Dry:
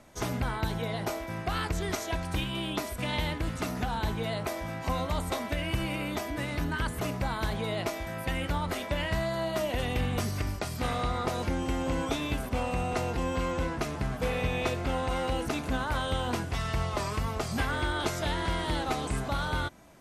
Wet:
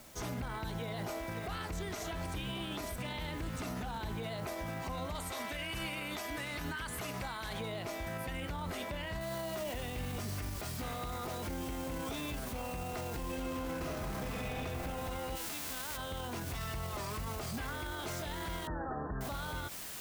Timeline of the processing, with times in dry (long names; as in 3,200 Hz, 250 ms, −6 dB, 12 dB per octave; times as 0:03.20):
0:00.76–0:01.84: delay throw 550 ms, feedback 70%, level −10.5 dB
0:05.15–0:07.60: tilt shelving filter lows −5 dB, about 750 Hz
0:09.21: noise floor change −56 dB −43 dB
0:13.20–0:14.48: thrown reverb, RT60 2.2 s, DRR −7.5 dB
0:15.35–0:15.96: spectral envelope flattened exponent 0.3
0:18.67–0:19.21: linear-phase brick-wall low-pass 1,900 Hz
whole clip: brickwall limiter −29 dBFS; level −1.5 dB